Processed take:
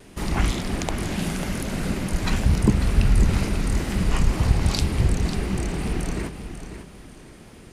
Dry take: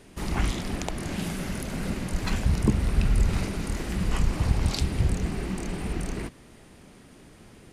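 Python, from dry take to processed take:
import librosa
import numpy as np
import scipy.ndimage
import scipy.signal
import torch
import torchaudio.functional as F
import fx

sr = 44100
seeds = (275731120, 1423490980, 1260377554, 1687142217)

p1 = x + fx.echo_feedback(x, sr, ms=544, feedback_pct=29, wet_db=-10.0, dry=0)
p2 = fx.wow_flutter(p1, sr, seeds[0], rate_hz=2.1, depth_cents=44.0)
y = p2 * 10.0 ** (4.0 / 20.0)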